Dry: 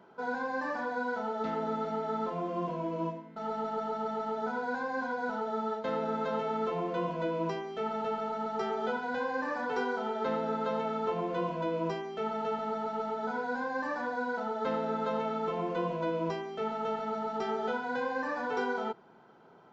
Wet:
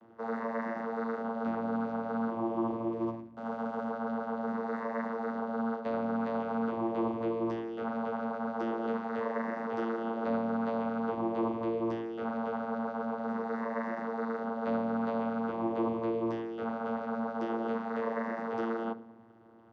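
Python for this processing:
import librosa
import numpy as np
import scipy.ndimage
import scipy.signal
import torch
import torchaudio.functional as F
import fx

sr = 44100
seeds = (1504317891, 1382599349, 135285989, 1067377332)

y = fx.backlash(x, sr, play_db=-42.0, at=(2.92, 3.91))
y = fx.room_shoebox(y, sr, seeds[0], volume_m3=2400.0, walls='furnished', distance_m=0.89)
y = fx.vocoder(y, sr, bands=16, carrier='saw', carrier_hz=114.0)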